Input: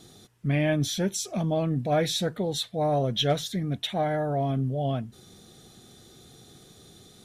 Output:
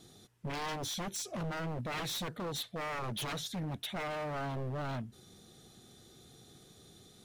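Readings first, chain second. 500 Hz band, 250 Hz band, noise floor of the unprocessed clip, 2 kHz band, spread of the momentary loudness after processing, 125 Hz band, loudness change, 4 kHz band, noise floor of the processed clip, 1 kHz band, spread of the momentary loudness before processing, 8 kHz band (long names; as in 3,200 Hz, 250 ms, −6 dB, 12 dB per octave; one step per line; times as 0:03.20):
−13.5 dB, −13.0 dB, −54 dBFS, −4.5 dB, 20 LU, −12.5 dB, −11.0 dB, −9.0 dB, −60 dBFS, −8.5 dB, 5 LU, −7.0 dB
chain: wave folding −26.5 dBFS
level −6 dB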